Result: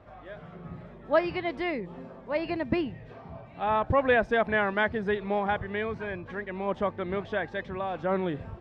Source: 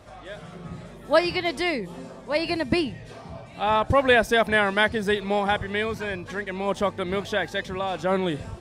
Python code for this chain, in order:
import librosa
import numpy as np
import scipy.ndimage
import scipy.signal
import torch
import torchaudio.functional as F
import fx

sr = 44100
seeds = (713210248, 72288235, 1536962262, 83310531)

y = scipy.signal.sosfilt(scipy.signal.butter(2, 2100.0, 'lowpass', fs=sr, output='sos'), x)
y = y * 10.0 ** (-4.0 / 20.0)